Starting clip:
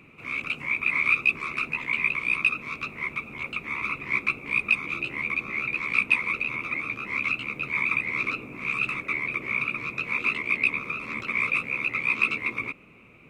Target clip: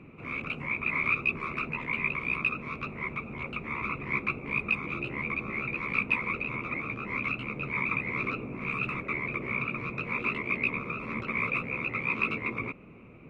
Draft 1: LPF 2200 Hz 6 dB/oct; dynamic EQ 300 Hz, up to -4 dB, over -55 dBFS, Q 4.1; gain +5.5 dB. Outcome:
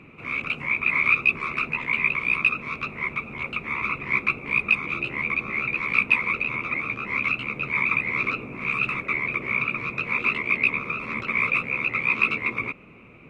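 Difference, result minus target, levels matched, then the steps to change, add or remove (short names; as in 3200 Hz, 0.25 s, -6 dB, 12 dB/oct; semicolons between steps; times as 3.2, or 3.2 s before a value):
500 Hz band -6.0 dB
change: LPF 690 Hz 6 dB/oct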